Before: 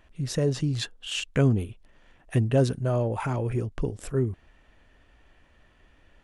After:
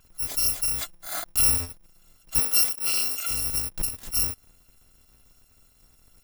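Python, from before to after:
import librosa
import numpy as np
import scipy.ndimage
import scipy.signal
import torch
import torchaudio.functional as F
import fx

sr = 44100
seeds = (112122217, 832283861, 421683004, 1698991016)

y = fx.bit_reversed(x, sr, seeds[0], block=256)
y = fx.highpass(y, sr, hz=300.0, slope=12, at=(2.39, 3.3))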